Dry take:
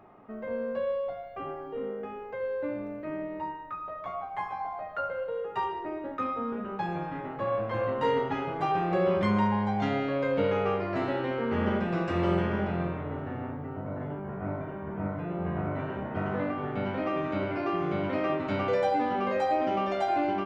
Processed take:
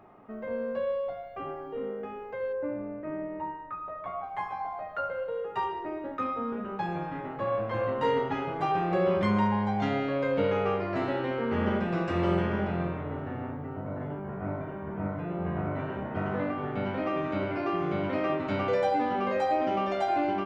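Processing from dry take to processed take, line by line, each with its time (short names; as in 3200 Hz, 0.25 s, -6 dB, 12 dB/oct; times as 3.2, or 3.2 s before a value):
2.52–4.22 LPF 1500 Hz -> 2900 Hz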